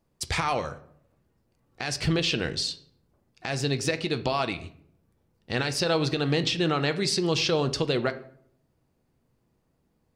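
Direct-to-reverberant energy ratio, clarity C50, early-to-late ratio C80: 9.5 dB, 15.0 dB, 18.0 dB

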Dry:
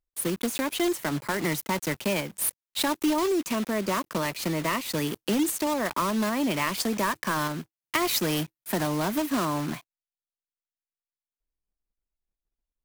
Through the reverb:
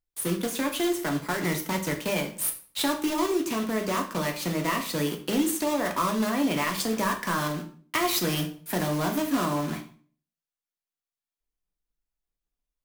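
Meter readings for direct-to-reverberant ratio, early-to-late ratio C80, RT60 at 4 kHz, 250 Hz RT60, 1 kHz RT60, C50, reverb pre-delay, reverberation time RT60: 2.0 dB, 15.5 dB, 0.40 s, 0.55 s, 0.45 s, 11.0 dB, 4 ms, 0.45 s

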